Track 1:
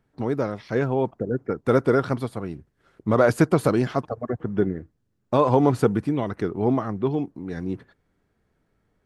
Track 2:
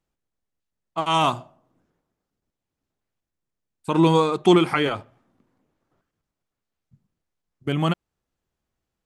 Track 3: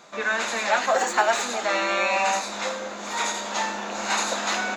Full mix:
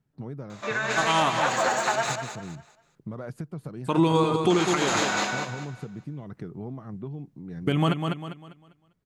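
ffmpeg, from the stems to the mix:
ffmpeg -i stem1.wav -i stem2.wav -i stem3.wav -filter_complex "[0:a]equalizer=frequency=150:width=1.5:gain=14,acompressor=threshold=-20dB:ratio=10,volume=-12.5dB[link_01];[1:a]dynaudnorm=framelen=150:gausssize=13:maxgain=10dB,volume=-5.5dB,asplit=2[link_02][link_03];[link_03]volume=-7.5dB[link_04];[2:a]adelay=500,volume=1.5dB,asplit=3[link_05][link_06][link_07];[link_05]atrim=end=1.96,asetpts=PTS-STARTPTS,afade=type=out:start_time=1.956:duration=0.004:curve=hsin[link_08];[link_06]atrim=start=1.96:end=4.5,asetpts=PTS-STARTPTS,volume=0[link_09];[link_07]atrim=start=4.5,asetpts=PTS-STARTPTS,afade=type=in:duration=0.004:curve=hsin[link_10];[link_08][link_09][link_10]concat=n=3:v=0:a=1,asplit=2[link_11][link_12];[link_12]volume=-5dB[link_13];[link_01][link_11]amix=inputs=2:normalize=0,acompressor=threshold=-25dB:ratio=6,volume=0dB[link_14];[link_04][link_13]amix=inputs=2:normalize=0,aecho=0:1:199|398|597|796|995:1|0.33|0.109|0.0359|0.0119[link_15];[link_02][link_14][link_15]amix=inputs=3:normalize=0,alimiter=limit=-12dB:level=0:latency=1:release=212" out.wav

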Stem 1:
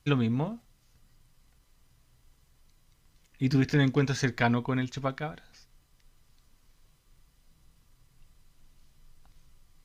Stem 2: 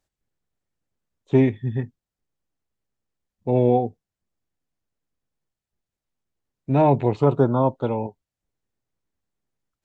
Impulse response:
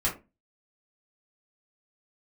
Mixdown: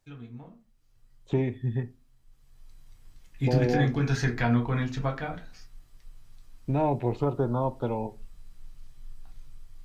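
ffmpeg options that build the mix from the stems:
-filter_complex "[0:a]alimiter=limit=-18.5dB:level=0:latency=1:release=124,adynamicequalizer=threshold=0.00251:dfrequency=2900:dqfactor=0.7:tfrequency=2900:tqfactor=0.7:attack=5:release=100:ratio=0.375:range=2:mode=cutabove:tftype=highshelf,volume=-4.5dB,afade=type=in:start_time=0.59:duration=0.45:silence=0.334965,afade=type=in:start_time=2.26:duration=0.48:silence=0.316228,asplit=2[link_01][link_02];[link_02]volume=-3.5dB[link_03];[1:a]acompressor=threshold=-33dB:ratio=2,volume=1dB,asplit=2[link_04][link_05];[link_05]volume=-19dB[link_06];[2:a]atrim=start_sample=2205[link_07];[link_03][link_06]amix=inputs=2:normalize=0[link_08];[link_08][link_07]afir=irnorm=-1:irlink=0[link_09];[link_01][link_04][link_09]amix=inputs=3:normalize=0"

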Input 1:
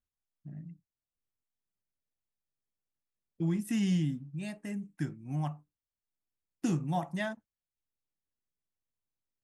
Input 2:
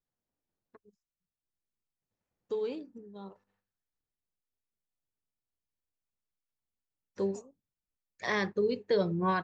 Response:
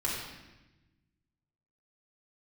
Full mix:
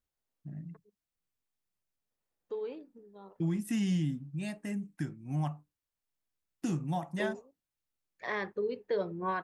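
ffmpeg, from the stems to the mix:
-filter_complex "[0:a]alimiter=level_in=1dB:limit=-24dB:level=0:latency=1:release=414,volume=-1dB,volume=1.5dB[link_01];[1:a]bass=frequency=250:gain=-9,treble=frequency=4000:gain=-15,volume=-3dB[link_02];[link_01][link_02]amix=inputs=2:normalize=0"

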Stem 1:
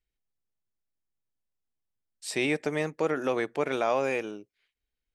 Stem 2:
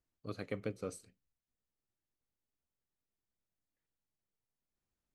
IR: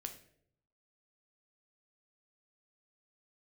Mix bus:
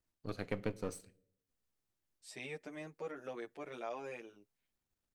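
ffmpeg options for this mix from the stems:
-filter_complex "[0:a]asplit=2[link_01][link_02];[link_02]adelay=8.3,afreqshift=2.3[link_03];[link_01][link_03]amix=inputs=2:normalize=1,volume=-14dB[link_04];[1:a]aeval=exprs='if(lt(val(0),0),0.447*val(0),val(0))':channel_layout=same,volume=1.5dB,asplit=2[link_05][link_06];[link_06]volume=-8dB[link_07];[2:a]atrim=start_sample=2205[link_08];[link_07][link_08]afir=irnorm=-1:irlink=0[link_09];[link_04][link_05][link_09]amix=inputs=3:normalize=0"

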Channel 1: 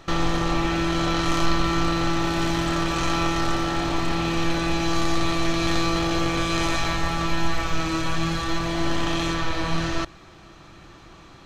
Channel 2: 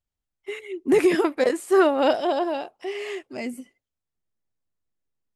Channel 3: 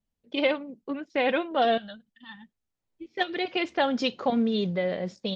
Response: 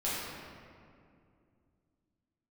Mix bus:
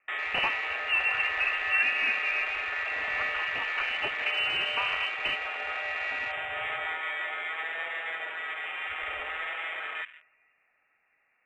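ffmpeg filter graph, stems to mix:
-filter_complex "[0:a]highpass=frequency=490:width=0.5412,highpass=frequency=490:width=1.3066,asoftclip=type=hard:threshold=-21dB,volume=-5dB,asplit=2[link_01][link_02];[link_02]volume=-16.5dB[link_03];[1:a]highpass=310,volume=-10.5dB,asplit=3[link_04][link_05][link_06];[link_05]volume=-13dB[link_07];[2:a]equalizer=frequency=1900:width=1.2:gain=8,acrossover=split=280|2200[link_08][link_09][link_10];[link_08]acompressor=threshold=-37dB:ratio=4[link_11];[link_09]acompressor=threshold=-33dB:ratio=4[link_12];[link_10]acompressor=threshold=-34dB:ratio=4[link_13];[link_11][link_12][link_13]amix=inputs=3:normalize=0,aeval=exprs='val(0)*sgn(sin(2*PI*110*n/s))':channel_layout=same,volume=1dB,asplit=2[link_14][link_15];[link_15]volume=-23.5dB[link_16];[link_06]apad=whole_len=236288[link_17];[link_14][link_17]sidechaincompress=threshold=-48dB:ratio=8:attack=16:release=978[link_18];[3:a]atrim=start_sample=2205[link_19];[link_03][link_07][link_16]amix=inputs=3:normalize=0[link_20];[link_20][link_19]afir=irnorm=-1:irlink=0[link_21];[link_01][link_04][link_18][link_21]amix=inputs=4:normalize=0,lowpass=frequency=2600:width_type=q:width=0.5098,lowpass=frequency=2600:width_type=q:width=0.6013,lowpass=frequency=2600:width_type=q:width=0.9,lowpass=frequency=2600:width_type=q:width=2.563,afreqshift=-3100,afwtdn=0.0112"

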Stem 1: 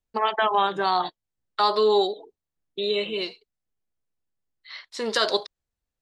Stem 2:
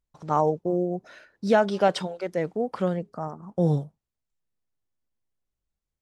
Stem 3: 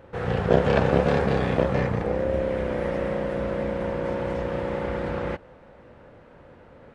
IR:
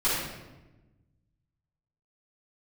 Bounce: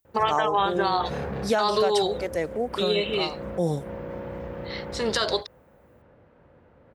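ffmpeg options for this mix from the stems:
-filter_complex "[0:a]volume=2dB[link_01];[1:a]aemphasis=mode=production:type=bsi,volume=1.5dB,asplit=2[link_02][link_03];[2:a]lowshelf=frequency=97:gain=6,asoftclip=type=tanh:threshold=-17dB,highshelf=frequency=3300:gain=-7.5,adelay=50,volume=-7dB[link_04];[link_03]apad=whole_len=308369[link_05];[link_04][link_05]sidechaincompress=threshold=-31dB:ratio=8:attack=8.5:release=200[link_06];[link_01][link_02][link_06]amix=inputs=3:normalize=0,highpass=57,alimiter=limit=-12.5dB:level=0:latency=1:release=164"

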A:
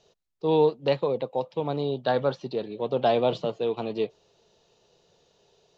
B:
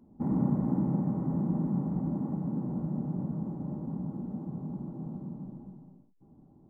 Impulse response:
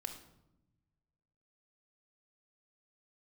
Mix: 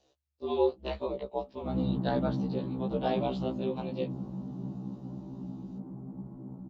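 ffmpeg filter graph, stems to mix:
-filter_complex "[0:a]aeval=exprs='val(0)*sin(2*PI*73*n/s)':channel_layout=same,volume=-2.5dB[link_01];[1:a]adelay=1450,volume=-2dB[link_02];[link_01][link_02]amix=inputs=2:normalize=0,afftfilt=real='re*1.73*eq(mod(b,3),0)':imag='im*1.73*eq(mod(b,3),0)':win_size=2048:overlap=0.75"

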